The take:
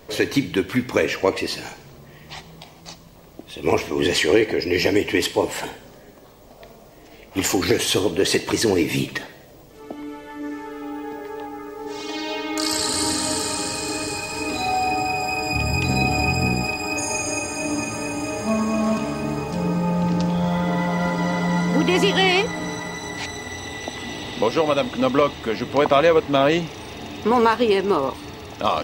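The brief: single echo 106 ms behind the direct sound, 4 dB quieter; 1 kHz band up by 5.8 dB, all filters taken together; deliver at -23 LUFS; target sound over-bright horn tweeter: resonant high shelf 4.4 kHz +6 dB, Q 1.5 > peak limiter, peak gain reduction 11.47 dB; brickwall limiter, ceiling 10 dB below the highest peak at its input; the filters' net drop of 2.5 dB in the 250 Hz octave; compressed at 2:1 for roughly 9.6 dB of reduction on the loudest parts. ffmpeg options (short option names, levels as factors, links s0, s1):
-af "equalizer=f=250:t=o:g=-4,equalizer=f=1000:t=o:g=8,acompressor=threshold=0.0501:ratio=2,alimiter=limit=0.133:level=0:latency=1,highshelf=f=4400:t=q:w=1.5:g=6,aecho=1:1:106:0.631,volume=2.37,alimiter=limit=0.188:level=0:latency=1"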